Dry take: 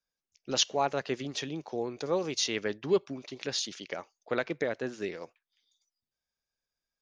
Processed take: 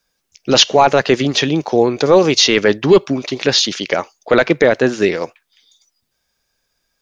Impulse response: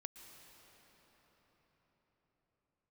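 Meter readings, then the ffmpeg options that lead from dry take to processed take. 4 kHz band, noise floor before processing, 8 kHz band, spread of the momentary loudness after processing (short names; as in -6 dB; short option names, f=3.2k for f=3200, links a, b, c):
+18.0 dB, under -85 dBFS, +14.0 dB, 10 LU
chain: -filter_complex "[0:a]acrossover=split=6000[a][b];[b]acompressor=threshold=-56dB:ratio=4:attack=1:release=60[c];[a][c]amix=inputs=2:normalize=0,apsyclip=22.5dB,volume=-2dB"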